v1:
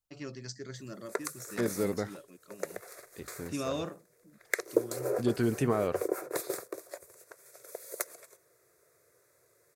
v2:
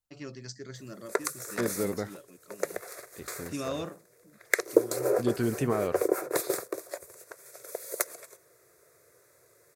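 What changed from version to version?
background +5.5 dB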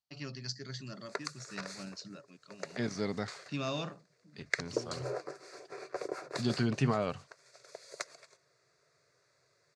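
second voice: entry +1.20 s; background -7.0 dB; master: add cabinet simulation 100–6500 Hz, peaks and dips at 140 Hz +6 dB, 340 Hz -8 dB, 490 Hz -7 dB, 2.8 kHz +5 dB, 4.5 kHz +9 dB

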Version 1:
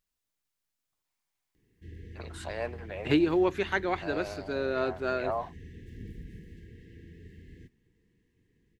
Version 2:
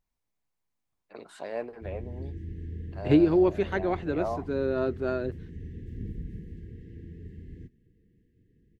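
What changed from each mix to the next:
first voice: entry -1.05 s; master: add tilt shelf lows +7 dB, about 690 Hz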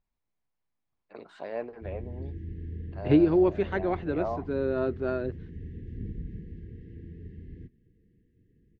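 master: add distance through air 150 m

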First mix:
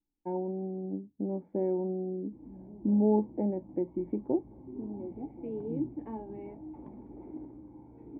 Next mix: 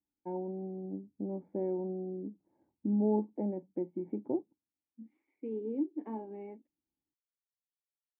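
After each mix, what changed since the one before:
first voice -4.0 dB; background: muted; master: add high-pass 64 Hz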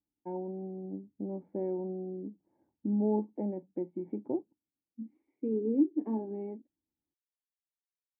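second voice: add tilt shelf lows +9.5 dB, about 840 Hz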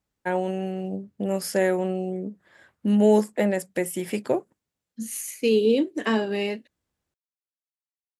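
master: remove cascade formant filter u

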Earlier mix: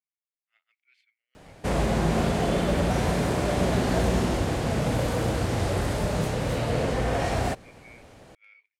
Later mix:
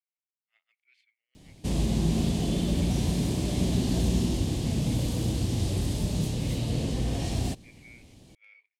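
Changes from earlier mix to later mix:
background: add high-order bell 1 kHz -12.5 dB 2.7 oct; master: add peaking EQ 1.4 kHz -8 dB 0.41 oct

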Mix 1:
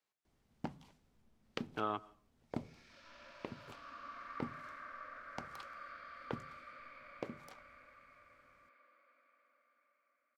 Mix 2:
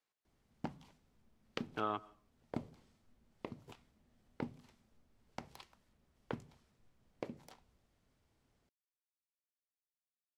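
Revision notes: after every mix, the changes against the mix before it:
second sound: muted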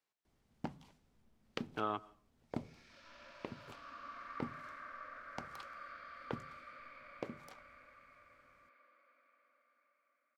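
second sound: unmuted

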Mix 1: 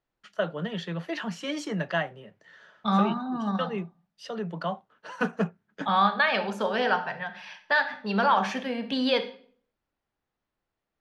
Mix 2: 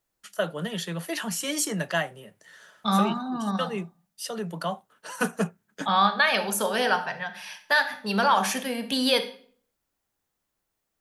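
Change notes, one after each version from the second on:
master: remove distance through air 210 m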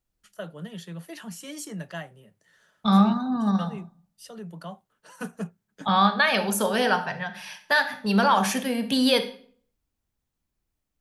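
first voice -11.5 dB; master: add bass shelf 220 Hz +11.5 dB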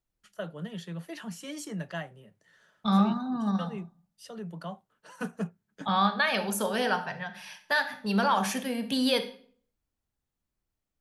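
first voice: add treble shelf 7.6 kHz -9 dB; second voice -5.0 dB

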